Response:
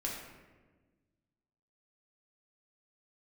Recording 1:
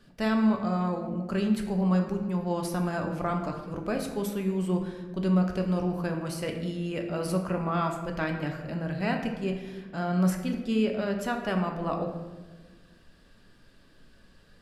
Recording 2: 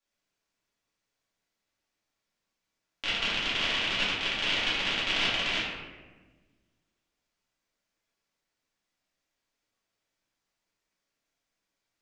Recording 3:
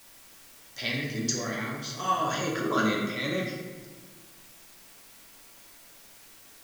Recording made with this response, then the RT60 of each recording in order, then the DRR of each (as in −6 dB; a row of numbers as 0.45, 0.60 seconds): 3; 1.3, 1.3, 1.3 seconds; 2.5, −10.0, −3.5 decibels